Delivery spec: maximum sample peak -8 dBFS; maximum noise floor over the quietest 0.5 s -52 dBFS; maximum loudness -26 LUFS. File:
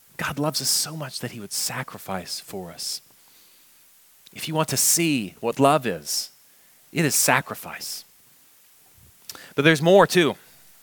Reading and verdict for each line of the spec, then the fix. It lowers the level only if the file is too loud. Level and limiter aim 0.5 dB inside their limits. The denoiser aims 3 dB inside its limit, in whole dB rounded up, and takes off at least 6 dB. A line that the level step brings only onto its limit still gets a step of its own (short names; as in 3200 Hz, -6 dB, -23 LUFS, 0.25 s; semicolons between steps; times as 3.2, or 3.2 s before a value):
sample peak -1.5 dBFS: fail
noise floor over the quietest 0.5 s -55 dBFS: OK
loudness -22.0 LUFS: fail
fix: gain -4.5 dB; limiter -8.5 dBFS